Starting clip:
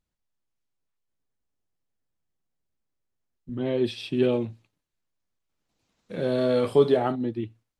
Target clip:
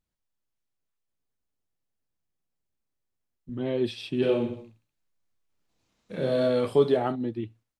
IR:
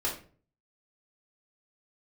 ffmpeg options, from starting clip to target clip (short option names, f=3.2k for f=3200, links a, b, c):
-filter_complex "[0:a]asplit=3[a][b][c];[a]afade=t=out:st=4.21:d=0.02[d];[b]aecho=1:1:30|67.5|114.4|173|246.2:0.631|0.398|0.251|0.158|0.1,afade=t=in:st=4.21:d=0.02,afade=t=out:st=6.48:d=0.02[e];[c]afade=t=in:st=6.48:d=0.02[f];[d][e][f]amix=inputs=3:normalize=0,volume=-2dB"